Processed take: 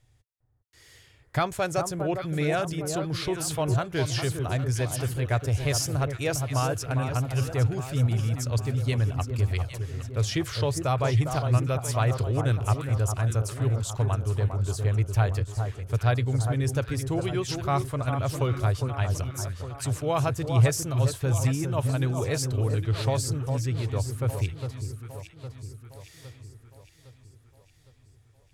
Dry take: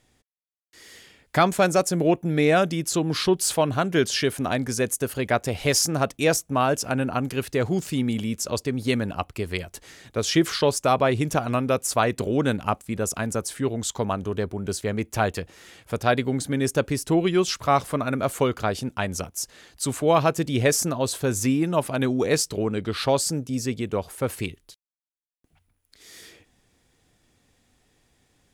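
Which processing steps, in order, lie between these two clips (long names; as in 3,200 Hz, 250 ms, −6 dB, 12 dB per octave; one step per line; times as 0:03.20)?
low shelf with overshoot 150 Hz +9.5 dB, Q 3
on a send: delay that swaps between a low-pass and a high-pass 405 ms, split 1,400 Hz, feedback 70%, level −6.5 dB
on the sum: level −7 dB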